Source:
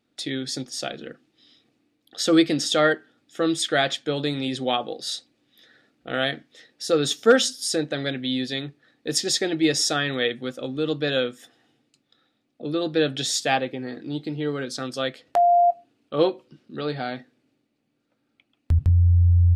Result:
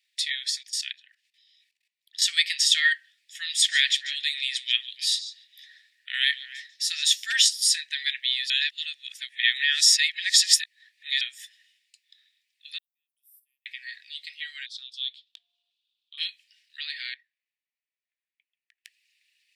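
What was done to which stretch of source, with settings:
0.50–2.22 s: level held to a coarse grid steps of 17 dB
3.43–7.10 s: repeats whose band climbs or falls 144 ms, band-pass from 5 kHz, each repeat -1.4 oct, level -12 dB
8.50–11.21 s: reverse
12.78–13.66 s: inverse Chebyshev band-stop 900–7100 Hz, stop band 60 dB
14.66–16.18 s: two resonant band-passes 1.9 kHz, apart 1.8 oct
17.14–18.85 s: band-pass filter 270 Hz, Q 0.82
whole clip: Chebyshev high-pass 1.8 kHz, order 6; band-stop 6.4 kHz, Q 20; trim +6.5 dB

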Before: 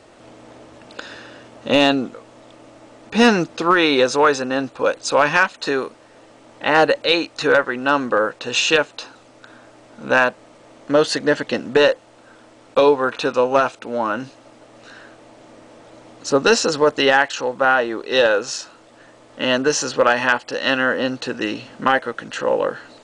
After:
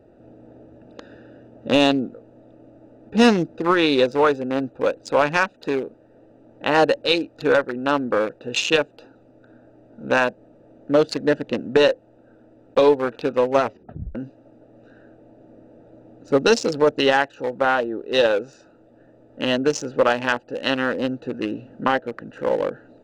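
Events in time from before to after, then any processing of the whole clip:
13.62 s: tape stop 0.53 s
21.85–22.28 s: treble shelf 8.2 kHz -12 dB
whole clip: local Wiener filter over 41 samples; dynamic bell 1.5 kHz, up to -4 dB, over -27 dBFS, Q 0.88

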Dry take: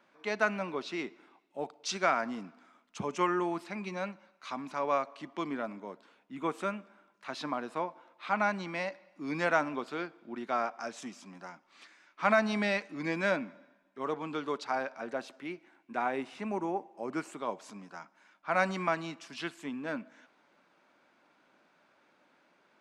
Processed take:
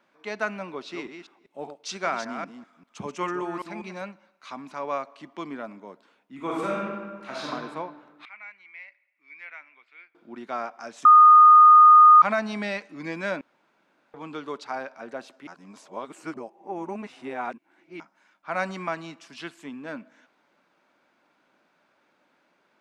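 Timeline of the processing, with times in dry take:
0.68–4.02 s: chunks repeated in reverse 196 ms, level -7 dB
6.35–7.50 s: reverb throw, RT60 1.6 s, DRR -5 dB
8.25–10.15 s: band-pass filter 2.2 kHz, Q 7.7
11.05–12.22 s: bleep 1.23 kHz -8.5 dBFS
13.41–14.14 s: room tone
15.47–18.00 s: reverse

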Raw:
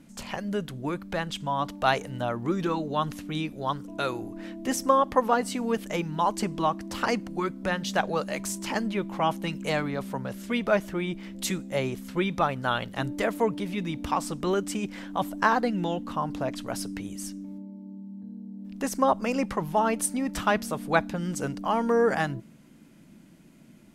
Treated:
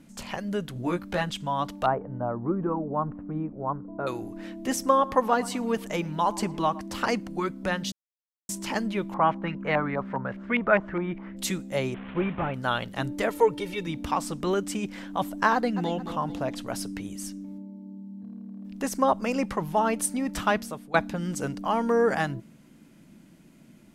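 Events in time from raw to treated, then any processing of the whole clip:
0.74–1.30 s: doubling 17 ms -2.5 dB
1.86–4.07 s: low-pass 1.2 kHz 24 dB/octave
4.81–6.81 s: band-passed feedback delay 112 ms, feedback 45%, band-pass 840 Hz, level -17.5 dB
7.92–8.49 s: mute
9.14–11.37 s: LFO low-pass saw up 4.9 Hz 920–2300 Hz
11.94–12.54 s: one-bit delta coder 16 kbps, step -36 dBFS
13.29–13.87 s: comb 2.2 ms, depth 82%
15.54–15.95 s: echo throw 220 ms, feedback 40%, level -10 dB
18.14–18.67 s: hard clipper -35 dBFS
20.51–20.94 s: fade out, to -18.5 dB

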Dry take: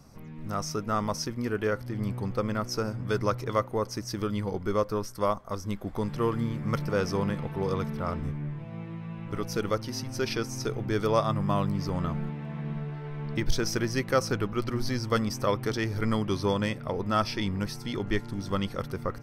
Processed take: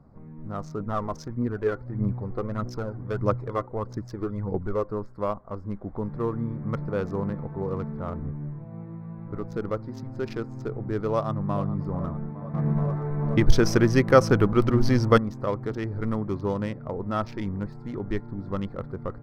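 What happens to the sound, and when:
0.80–4.88 s: phaser 1.6 Hz
11.12–11.67 s: echo throw 430 ms, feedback 70%, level -12.5 dB
12.54–15.18 s: gain +9.5 dB
whole clip: local Wiener filter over 15 samples; treble shelf 2.4 kHz -10.5 dB

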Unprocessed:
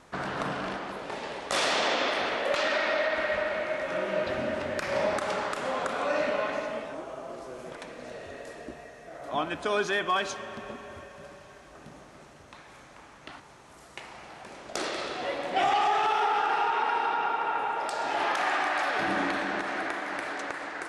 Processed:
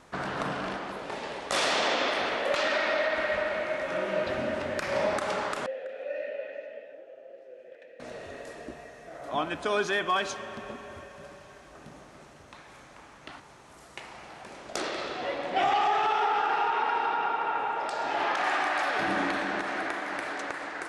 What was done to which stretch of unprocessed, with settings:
5.66–8.00 s: vowel filter e
14.80–18.44 s: distance through air 54 m

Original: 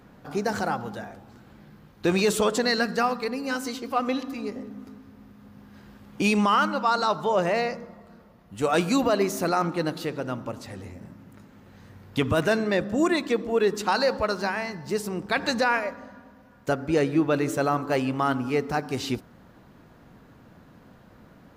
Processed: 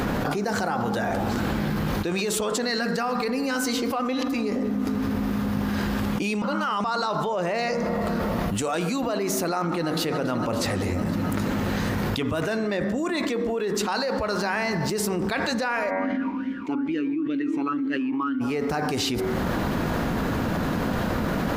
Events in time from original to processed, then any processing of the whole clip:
6.42–6.84 s: reverse
7.58–8.75 s: dynamic bell 7 kHz, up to +6 dB, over -53 dBFS, Q 0.99
9.55–10.03 s: echo throw 280 ms, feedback 60%, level -16 dB
15.89–18.40 s: talking filter i-u 3.1 Hz -> 1.6 Hz
whole clip: peaking EQ 130 Hz -7 dB 0.24 oct; de-hum 94.45 Hz, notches 24; level flattener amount 100%; trim -7 dB

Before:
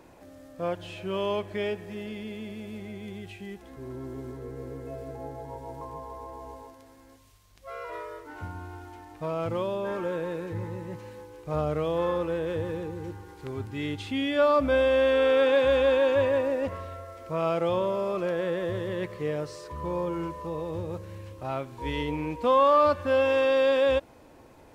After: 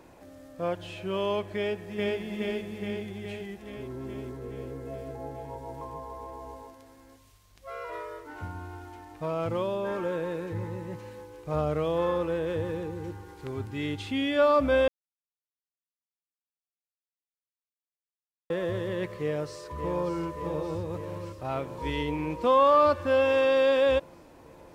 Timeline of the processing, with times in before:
1.56–2.19 s: echo throw 420 ms, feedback 65%, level 0 dB
14.88–18.50 s: mute
19.19–20.16 s: echo throw 580 ms, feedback 75%, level -8.5 dB

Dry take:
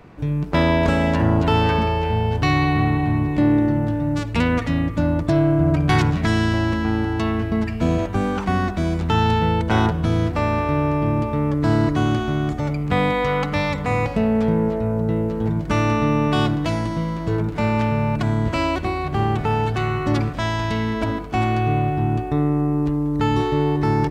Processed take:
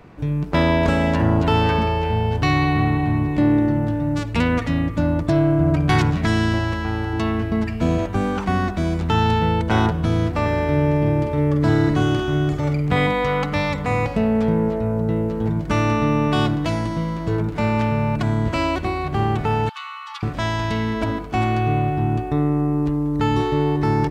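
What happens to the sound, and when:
6.59–7.13 s: peaking EQ 250 Hz -10 dB 0.73 oct
10.41–13.07 s: multi-tap echo 43/48/97 ms -11.5/-6/-18 dB
19.69–20.23 s: rippled Chebyshev high-pass 850 Hz, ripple 9 dB

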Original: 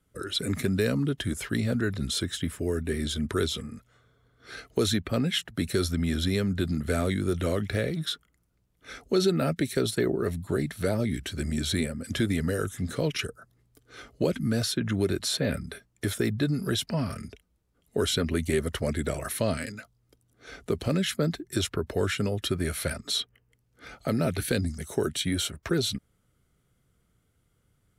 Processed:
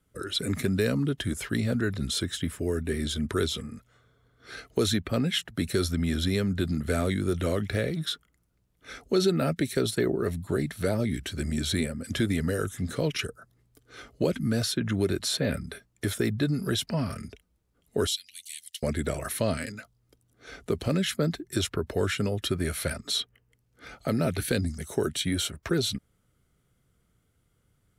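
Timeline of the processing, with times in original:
18.07–18.83 s: inverse Chebyshev high-pass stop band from 1.2 kHz, stop band 50 dB

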